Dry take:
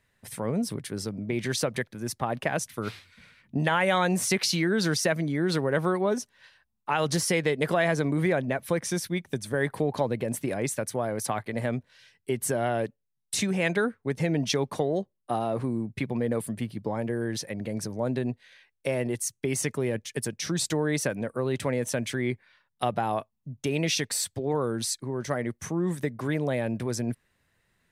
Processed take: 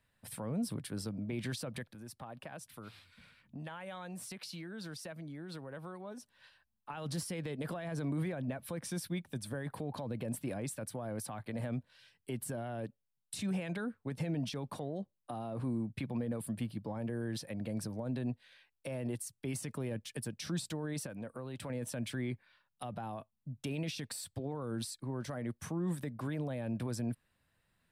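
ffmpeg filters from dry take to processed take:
ffmpeg -i in.wav -filter_complex "[0:a]asettb=1/sr,asplit=3[link_01][link_02][link_03];[link_01]atrim=end=1.834[link_04];[link_02]atrim=start=1.83:end=6.9,asetpts=PTS-STARTPTS,afade=type=in:duration=0.004:curve=qsin,afade=type=out:start_time=5.066:duration=0.004:curve=qsin,acompressor=threshold=-47dB:ratio=2:attack=3.2:release=140:knee=1:detection=peak[link_05];[link_03]atrim=start=6.896[link_06];[link_04][link_05]acrossfade=duration=0.004:curve1=hsin:curve2=qsin[link_07];[link_07][link_06]acrossfade=duration=0.004:curve1=qsin:curve2=hsin,asettb=1/sr,asplit=3[link_08][link_09][link_10];[link_08]atrim=end=21.064[link_11];[link_09]atrim=start=21.06:end=21.7,asetpts=PTS-STARTPTS,afade=type=in:duration=0.004:curve=qsin,afade=type=out:start_time=0.636:duration=0.004:curve=qsin,acompressor=threshold=-38dB:ratio=2:attack=3.2:release=140:knee=1:detection=peak[link_12];[link_10]atrim=start=21.696[link_13];[link_11][link_12]acrossfade=duration=0.004:curve1=hsin:curve2=qsin[link_14];[link_14][link_13]acrossfade=duration=0.004:curve1=qsin:curve2=hsin,equalizer=frequency=400:width_type=o:width=0.33:gain=-7,equalizer=frequency=2000:width_type=o:width=0.33:gain=-6,equalizer=frequency=6300:width_type=o:width=0.33:gain=-8,alimiter=limit=-23dB:level=0:latency=1:release=25,acrossover=split=330[link_15][link_16];[link_16]acompressor=threshold=-36dB:ratio=6[link_17];[link_15][link_17]amix=inputs=2:normalize=0,volume=-4.5dB" out.wav

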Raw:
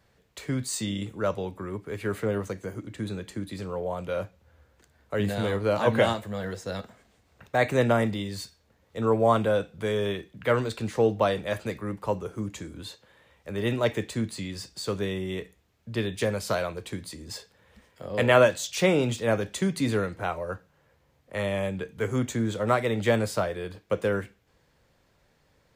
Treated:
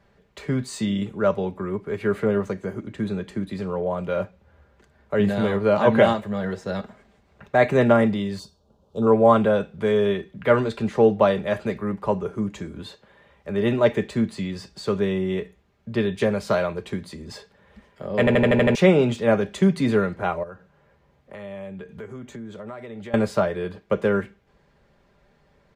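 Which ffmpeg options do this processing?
ffmpeg -i in.wav -filter_complex "[0:a]asettb=1/sr,asplit=3[link_01][link_02][link_03];[link_01]atrim=end=8.394[link_04];[link_02]atrim=start=8.39:end=9.07,asetpts=PTS-STARTPTS,afade=type=in:duration=0.004:curve=qsin,afade=type=out:start_time=0.676:duration=0.004:curve=qsin,asuperstop=centerf=2000:order=4:qfactor=0.86[link_05];[link_03]atrim=start=9.066[link_06];[link_04][link_05]acrossfade=duration=0.004:curve1=hsin:curve2=qsin[link_07];[link_07][link_06]acrossfade=duration=0.004:curve1=qsin:curve2=hsin,asettb=1/sr,asplit=3[link_08][link_09][link_10];[link_08]atrim=end=20.434[link_11];[link_09]atrim=start=20.43:end=23.14,asetpts=PTS-STARTPTS,afade=type=in:duration=0.004:curve=qsin,afade=type=out:start_time=2.706:duration=0.004:curve=qsin,acompressor=threshold=-41dB:ratio=5:attack=3.2:release=140:knee=1:detection=peak[link_12];[link_10]atrim=start=23.136[link_13];[link_11][link_12]acrossfade=duration=0.004:curve1=hsin:curve2=qsin[link_14];[link_14][link_13]acrossfade=duration=0.004:curve1=qsin:curve2=hsin,asplit=8[link_15][link_16][link_17][link_18][link_19][link_20][link_21][link_22];[link_15]atrim=end=18.272[link_23];[link_16]atrim=start=18.188:end=18.272[link_24];[link_17]atrim=start=18.188:end=18.272[link_25];[link_18]atrim=start=18.188:end=18.272[link_26];[link_19]atrim=start=18.188:end=18.272[link_27];[link_20]atrim=start=18.188:end=18.272[link_28];[link_21]atrim=start=18.188:end=18.272[link_29];[link_22]atrim=start=18.748[link_30];[link_23][link_24]acrossfade=duration=0.004:curve1=hsin:curve2=hsin[link_31];[link_31][link_25]acrossfade=duration=0.004:curve1=hsin:curve2=hsin[link_32];[link_32][link_26]acrossfade=duration=0.004:curve1=hsin:curve2=hsin[link_33];[link_33][link_27]acrossfade=duration=0.004:curve1=hsin:curve2=hsin[link_34];[link_34][link_28]acrossfade=duration=0.004:curve1=hsin:curve2=hsin[link_35];[link_35][link_29]acrossfade=duration=0.004:curve1=hsin:curve2=hsin[link_36];[link_36][link_30]acrossfade=duration=0.004:curve1=hsin:curve2=hsin,lowpass=frequency=1900:poles=1,aecho=1:1:5:0.44,volume=5.5dB" out.wav

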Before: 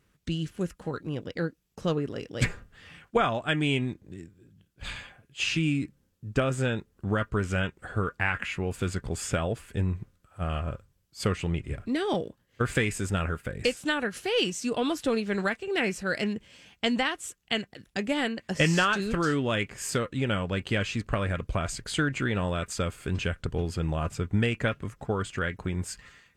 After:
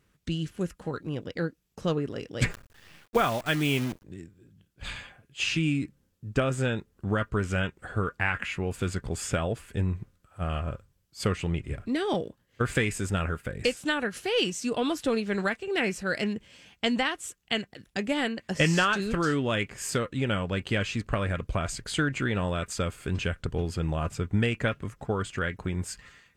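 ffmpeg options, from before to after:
ffmpeg -i in.wav -filter_complex "[0:a]asettb=1/sr,asplit=3[link_01][link_02][link_03];[link_01]atrim=end=2.504[link_04];[link_02]atrim=start=2.5:end=4.04,asetpts=PTS-STARTPTS,afade=type=in:duration=0.004:curve=qsin,afade=type=out:start_time=1.536:duration=0.004:curve=qsin,acrusher=bits=7:dc=4:mix=0:aa=0.000001[link_05];[link_03]atrim=start=4.036[link_06];[link_04][link_05]acrossfade=duration=0.004:curve1=hsin:curve2=qsin[link_07];[link_07][link_06]acrossfade=duration=0.004:curve1=qsin:curve2=hsin" out.wav

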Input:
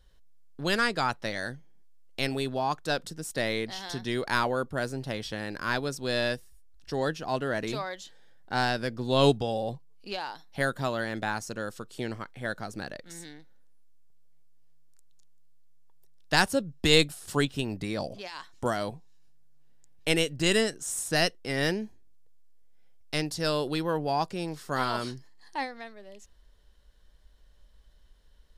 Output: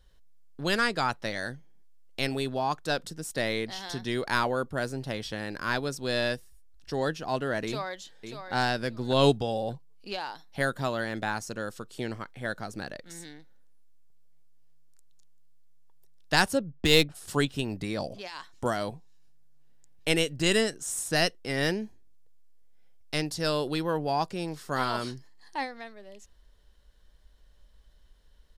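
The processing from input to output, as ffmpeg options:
ffmpeg -i in.wav -filter_complex "[0:a]asplit=2[link_01][link_02];[link_02]afade=type=in:start_time=7.64:duration=0.01,afade=type=out:start_time=8.54:duration=0.01,aecho=0:1:590|1180:0.398107|0.0597161[link_03];[link_01][link_03]amix=inputs=2:normalize=0,asplit=3[link_04][link_05][link_06];[link_04]afade=type=out:start_time=16.57:duration=0.02[link_07];[link_05]adynamicsmooth=sensitivity=4:basefreq=2000,afade=type=in:start_time=16.57:duration=0.02,afade=type=out:start_time=17.14:duration=0.02[link_08];[link_06]afade=type=in:start_time=17.14:duration=0.02[link_09];[link_07][link_08][link_09]amix=inputs=3:normalize=0" out.wav

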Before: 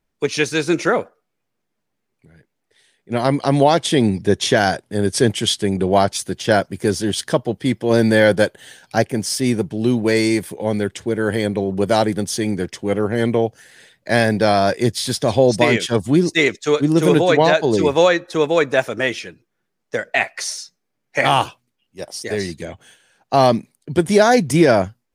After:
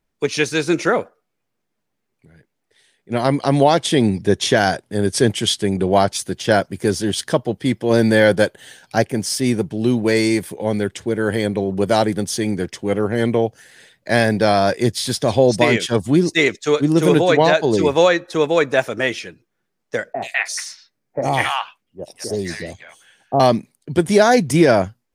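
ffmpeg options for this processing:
ffmpeg -i in.wav -filter_complex "[0:a]asettb=1/sr,asplit=3[link_01][link_02][link_03];[link_01]atrim=end=20.134[link_04];[link_02]atrim=start=20.13:end=23.4,asetpts=PTS-STARTPTS,afade=type=in:duration=0.004:curve=qsin,afade=type=out:start_time=3.266:duration=0.004:curve=qsin,acrossover=split=920|3500[link_05][link_06][link_07];[link_07]adelay=80[link_08];[link_06]adelay=200[link_09];[link_05][link_09][link_08]amix=inputs=3:normalize=0,atrim=end_sample=144207[link_10];[link_03]atrim=start=23.396[link_11];[link_04][link_10]acrossfade=duration=0.004:curve1=hsin:curve2=qsin[link_12];[link_12][link_11]acrossfade=duration=0.004:curve1=qsin:curve2=hsin" out.wav

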